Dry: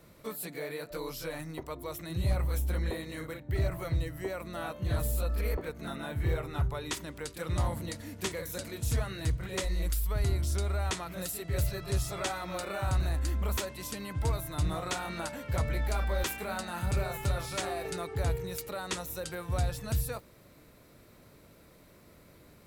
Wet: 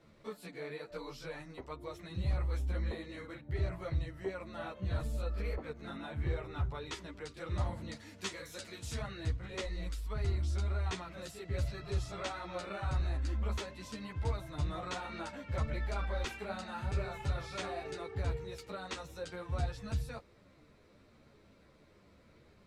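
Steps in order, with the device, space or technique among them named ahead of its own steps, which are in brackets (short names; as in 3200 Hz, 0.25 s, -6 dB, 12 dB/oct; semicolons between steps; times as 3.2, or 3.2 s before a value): 7.95–9.01 tilt +2 dB/oct; string-machine ensemble chorus (ensemble effect; LPF 5200 Hz 12 dB/oct); gain -2 dB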